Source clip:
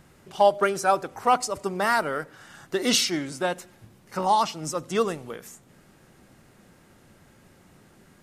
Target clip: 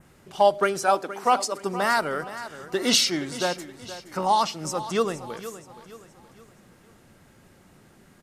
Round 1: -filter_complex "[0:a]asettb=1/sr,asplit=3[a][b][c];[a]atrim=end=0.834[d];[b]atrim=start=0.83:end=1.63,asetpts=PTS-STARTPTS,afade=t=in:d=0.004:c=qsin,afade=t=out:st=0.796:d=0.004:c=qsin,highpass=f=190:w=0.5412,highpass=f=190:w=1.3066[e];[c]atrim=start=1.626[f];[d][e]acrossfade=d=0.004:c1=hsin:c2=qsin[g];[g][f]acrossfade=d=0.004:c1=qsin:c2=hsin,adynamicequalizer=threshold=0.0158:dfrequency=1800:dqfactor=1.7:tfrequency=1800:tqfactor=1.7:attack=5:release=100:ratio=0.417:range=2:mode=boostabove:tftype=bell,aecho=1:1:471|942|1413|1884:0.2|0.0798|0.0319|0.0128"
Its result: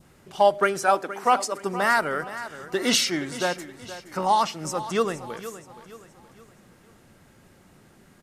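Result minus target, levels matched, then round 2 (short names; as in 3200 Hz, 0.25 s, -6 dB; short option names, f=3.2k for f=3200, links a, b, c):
2000 Hz band +2.5 dB
-filter_complex "[0:a]asettb=1/sr,asplit=3[a][b][c];[a]atrim=end=0.834[d];[b]atrim=start=0.83:end=1.63,asetpts=PTS-STARTPTS,afade=t=in:d=0.004:c=qsin,afade=t=out:st=0.796:d=0.004:c=qsin,highpass=f=190:w=0.5412,highpass=f=190:w=1.3066[e];[c]atrim=start=1.626[f];[d][e]acrossfade=d=0.004:c1=hsin:c2=qsin[g];[g][f]acrossfade=d=0.004:c1=qsin:c2=hsin,adynamicequalizer=threshold=0.0158:dfrequency=4400:dqfactor=1.7:tfrequency=4400:tqfactor=1.7:attack=5:release=100:ratio=0.417:range=2:mode=boostabove:tftype=bell,aecho=1:1:471|942|1413|1884:0.2|0.0798|0.0319|0.0128"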